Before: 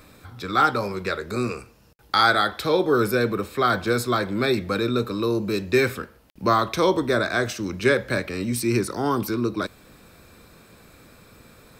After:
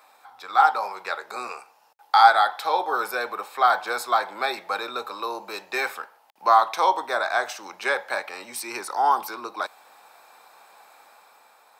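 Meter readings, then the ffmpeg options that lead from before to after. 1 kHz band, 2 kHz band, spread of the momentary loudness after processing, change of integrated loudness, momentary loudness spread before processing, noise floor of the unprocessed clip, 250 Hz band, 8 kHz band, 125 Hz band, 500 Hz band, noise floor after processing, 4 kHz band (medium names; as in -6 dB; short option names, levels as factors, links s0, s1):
+5.0 dB, -1.0 dB, 15 LU, -0.5 dB, 8 LU, -53 dBFS, -19.0 dB, -3.0 dB, under -30 dB, -7.5 dB, -58 dBFS, -3.0 dB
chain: -af "dynaudnorm=f=110:g=13:m=1.58,highpass=f=820:t=q:w=6.3,volume=0.473"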